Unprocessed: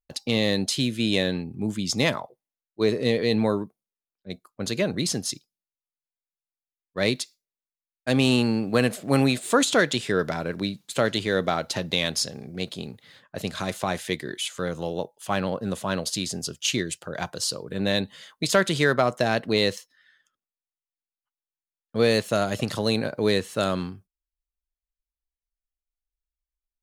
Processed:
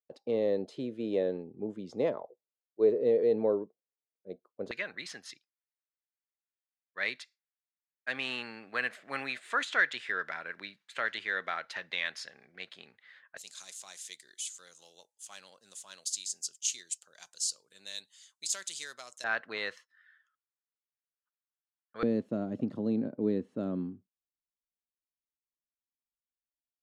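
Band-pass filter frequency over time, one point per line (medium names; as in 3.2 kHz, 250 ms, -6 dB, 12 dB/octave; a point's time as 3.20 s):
band-pass filter, Q 2.6
470 Hz
from 4.71 s 1.8 kHz
from 13.37 s 7.2 kHz
from 19.24 s 1.5 kHz
from 22.03 s 260 Hz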